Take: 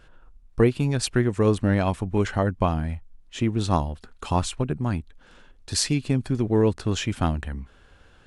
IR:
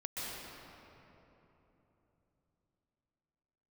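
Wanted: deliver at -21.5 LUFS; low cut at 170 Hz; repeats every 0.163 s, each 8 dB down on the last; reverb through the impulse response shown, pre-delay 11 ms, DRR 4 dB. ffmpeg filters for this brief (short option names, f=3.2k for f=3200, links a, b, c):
-filter_complex "[0:a]highpass=170,aecho=1:1:163|326|489|652|815:0.398|0.159|0.0637|0.0255|0.0102,asplit=2[a][b];[1:a]atrim=start_sample=2205,adelay=11[c];[b][c]afir=irnorm=-1:irlink=0,volume=-6.5dB[d];[a][d]amix=inputs=2:normalize=0,volume=3dB"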